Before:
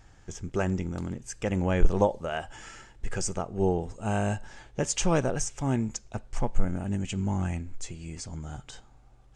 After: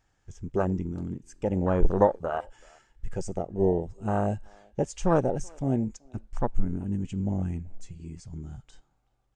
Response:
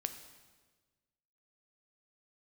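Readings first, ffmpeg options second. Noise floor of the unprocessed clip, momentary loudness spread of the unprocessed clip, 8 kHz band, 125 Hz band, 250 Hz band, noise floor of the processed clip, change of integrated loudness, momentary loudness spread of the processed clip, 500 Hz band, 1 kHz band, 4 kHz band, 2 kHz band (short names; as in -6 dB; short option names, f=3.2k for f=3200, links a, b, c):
-55 dBFS, 15 LU, -12.5 dB, -0.5 dB, +1.0 dB, -71 dBFS, +1.5 dB, 18 LU, +2.5 dB, +2.0 dB, -12.5 dB, -6.0 dB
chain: -filter_complex "[0:a]afwtdn=0.0398,lowshelf=f=230:g=-5.5,asplit=2[a][b];[b]adelay=380,highpass=300,lowpass=3.4k,asoftclip=type=hard:threshold=-19.5dB,volume=-27dB[c];[a][c]amix=inputs=2:normalize=0,volume=4dB"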